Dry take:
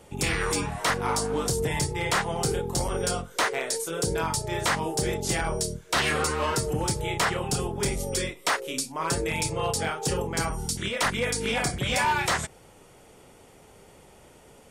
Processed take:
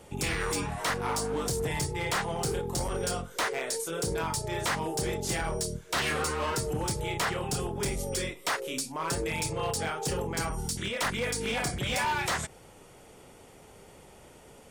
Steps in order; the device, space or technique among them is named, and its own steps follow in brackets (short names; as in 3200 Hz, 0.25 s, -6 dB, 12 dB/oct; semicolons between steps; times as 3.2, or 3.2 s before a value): clipper into limiter (hard clip -22.5 dBFS, distortion -17 dB; limiter -25.5 dBFS, peak gain reduction 3 dB)